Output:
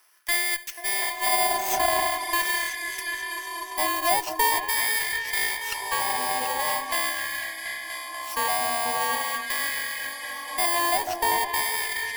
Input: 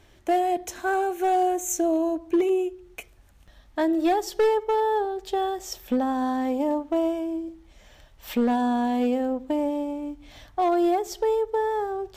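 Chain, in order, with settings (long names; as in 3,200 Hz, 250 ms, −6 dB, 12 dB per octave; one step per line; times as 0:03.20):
samples in bit-reversed order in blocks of 32 samples
on a send: echo whose low-pass opens from repeat to repeat 244 ms, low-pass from 200 Hz, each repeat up 2 octaves, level 0 dB
on the sum: auto-filter high-pass sine 0.43 Hz 830–1,700 Hz
harmonic generator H 6 −23 dB, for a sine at −8.5 dBFS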